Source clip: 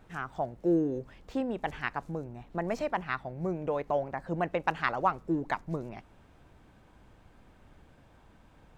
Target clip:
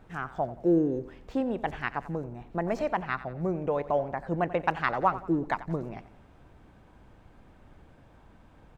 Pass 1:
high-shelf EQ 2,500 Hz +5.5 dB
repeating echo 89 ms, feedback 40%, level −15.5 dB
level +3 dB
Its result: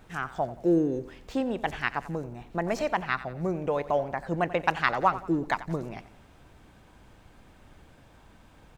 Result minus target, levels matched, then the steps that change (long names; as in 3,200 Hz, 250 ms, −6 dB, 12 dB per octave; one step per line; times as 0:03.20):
4,000 Hz band +6.0 dB
change: high-shelf EQ 2,500 Hz −6 dB